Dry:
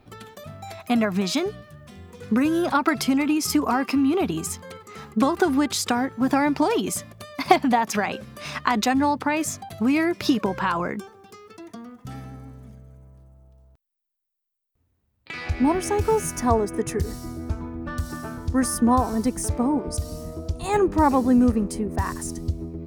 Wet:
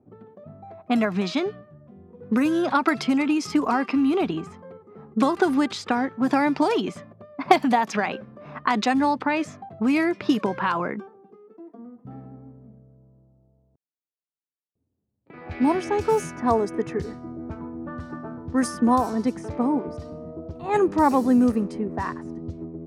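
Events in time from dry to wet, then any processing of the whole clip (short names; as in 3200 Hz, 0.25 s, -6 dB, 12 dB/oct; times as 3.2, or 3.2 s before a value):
10.99–11.77 HPF 100 Hz -> 270 Hz 24 dB/oct
whole clip: low-pass opened by the level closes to 450 Hz, open at -16 dBFS; HPF 150 Hz 12 dB/oct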